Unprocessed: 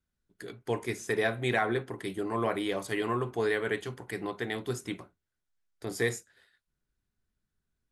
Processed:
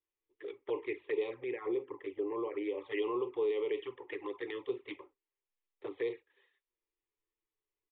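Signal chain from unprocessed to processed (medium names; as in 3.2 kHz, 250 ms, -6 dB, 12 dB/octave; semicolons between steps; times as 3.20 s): resonant low shelf 240 Hz -14 dB, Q 1.5; peak limiter -23 dBFS, peak gain reduction 8.5 dB; static phaser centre 1 kHz, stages 8; touch-sensitive flanger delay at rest 9 ms, full sweep at -29.5 dBFS; resampled via 8 kHz; 1.34–2.78 s: distance through air 440 m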